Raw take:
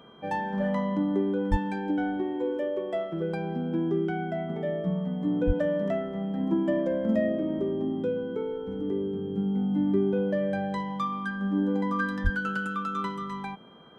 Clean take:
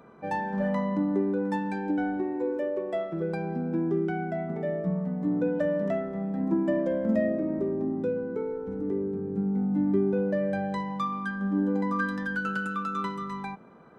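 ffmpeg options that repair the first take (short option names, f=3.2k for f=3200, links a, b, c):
-filter_complex "[0:a]bandreject=f=3.2k:w=30,asplit=3[a][b][c];[a]afade=t=out:st=1.5:d=0.02[d];[b]highpass=f=140:w=0.5412,highpass=f=140:w=1.3066,afade=t=in:st=1.5:d=0.02,afade=t=out:st=1.62:d=0.02[e];[c]afade=t=in:st=1.62:d=0.02[f];[d][e][f]amix=inputs=3:normalize=0,asplit=3[g][h][i];[g]afade=t=out:st=5.46:d=0.02[j];[h]highpass=f=140:w=0.5412,highpass=f=140:w=1.3066,afade=t=in:st=5.46:d=0.02,afade=t=out:st=5.58:d=0.02[k];[i]afade=t=in:st=5.58:d=0.02[l];[j][k][l]amix=inputs=3:normalize=0,asplit=3[m][n][o];[m]afade=t=out:st=12.23:d=0.02[p];[n]highpass=f=140:w=0.5412,highpass=f=140:w=1.3066,afade=t=in:st=12.23:d=0.02,afade=t=out:st=12.35:d=0.02[q];[o]afade=t=in:st=12.35:d=0.02[r];[p][q][r]amix=inputs=3:normalize=0"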